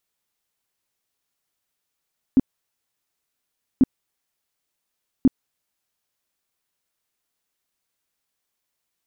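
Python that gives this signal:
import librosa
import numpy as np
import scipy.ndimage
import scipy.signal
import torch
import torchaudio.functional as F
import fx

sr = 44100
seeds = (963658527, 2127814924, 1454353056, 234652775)

y = fx.tone_burst(sr, hz=262.0, cycles=7, every_s=1.44, bursts=3, level_db=-9.5)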